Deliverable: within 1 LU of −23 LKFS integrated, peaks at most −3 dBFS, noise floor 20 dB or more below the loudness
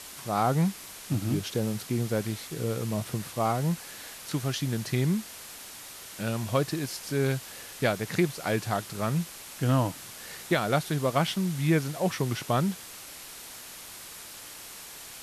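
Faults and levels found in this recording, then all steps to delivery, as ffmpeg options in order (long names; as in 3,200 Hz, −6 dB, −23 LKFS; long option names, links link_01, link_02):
background noise floor −44 dBFS; target noise floor −49 dBFS; integrated loudness −29.0 LKFS; sample peak −12.5 dBFS; target loudness −23.0 LKFS
→ -af "afftdn=noise_reduction=6:noise_floor=-44"
-af "volume=6dB"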